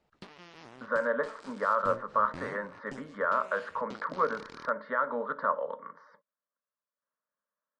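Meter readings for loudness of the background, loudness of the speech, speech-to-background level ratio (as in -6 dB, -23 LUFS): -49.5 LUFS, -31.5 LUFS, 18.0 dB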